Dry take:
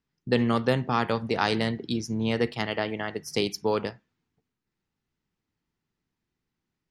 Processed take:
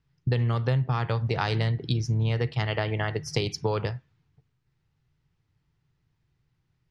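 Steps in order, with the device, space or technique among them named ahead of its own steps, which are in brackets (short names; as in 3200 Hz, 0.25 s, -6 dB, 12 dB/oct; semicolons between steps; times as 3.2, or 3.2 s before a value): jukebox (LPF 5700 Hz 12 dB/oct; resonant low shelf 170 Hz +7.5 dB, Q 3; compressor 5:1, threshold -28 dBFS, peak gain reduction 12.5 dB); gain +5 dB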